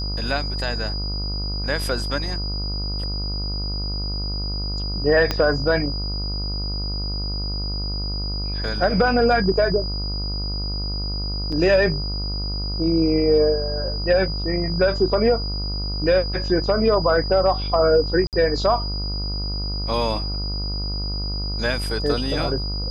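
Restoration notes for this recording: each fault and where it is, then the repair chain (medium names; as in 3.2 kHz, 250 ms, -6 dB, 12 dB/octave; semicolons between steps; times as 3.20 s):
buzz 50 Hz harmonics 28 -27 dBFS
whine 4.9 kHz -29 dBFS
5.31 s: pop -7 dBFS
11.52 s: dropout 4.9 ms
18.27–18.33 s: dropout 58 ms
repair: de-click; band-stop 4.9 kHz, Q 30; de-hum 50 Hz, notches 28; interpolate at 11.52 s, 4.9 ms; interpolate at 18.27 s, 58 ms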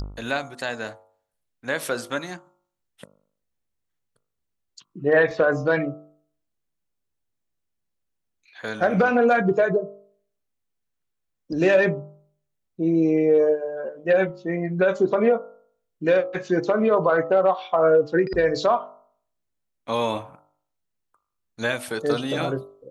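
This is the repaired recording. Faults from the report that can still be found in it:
5.31 s: pop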